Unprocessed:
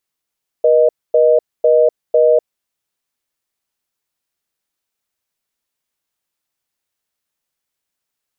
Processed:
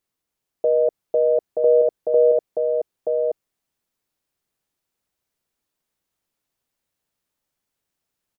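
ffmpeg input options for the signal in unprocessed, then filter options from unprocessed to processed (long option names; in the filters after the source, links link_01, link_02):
-f lavfi -i "aevalsrc='0.299*(sin(2*PI*480*t)+sin(2*PI*620*t))*clip(min(mod(t,0.5),0.25-mod(t,0.5))/0.005,0,1)':duration=1.95:sample_rate=44100"
-af "tiltshelf=frequency=750:gain=4,alimiter=limit=-11.5dB:level=0:latency=1:release=12,aecho=1:1:927:0.668"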